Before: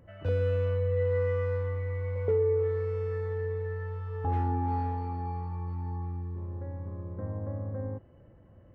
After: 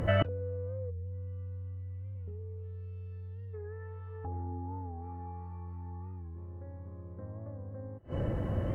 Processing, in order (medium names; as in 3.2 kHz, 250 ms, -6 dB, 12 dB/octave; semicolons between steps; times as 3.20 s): time-frequency box 0.91–3.55 s, 280–2500 Hz -18 dB; low-pass that closes with the level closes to 730 Hz, closed at -27 dBFS; in parallel at +3 dB: compression, threshold -45 dBFS, peak gain reduction 19 dB; on the sum: inverted gate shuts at -31 dBFS, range -26 dB; warped record 45 rpm, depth 100 cents; trim +15.5 dB